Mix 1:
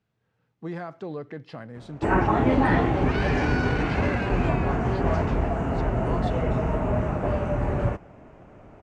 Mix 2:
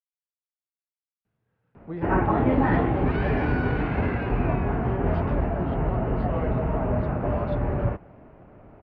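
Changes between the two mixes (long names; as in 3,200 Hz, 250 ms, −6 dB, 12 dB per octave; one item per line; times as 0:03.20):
speech: entry +1.25 s
master: add high-frequency loss of the air 370 metres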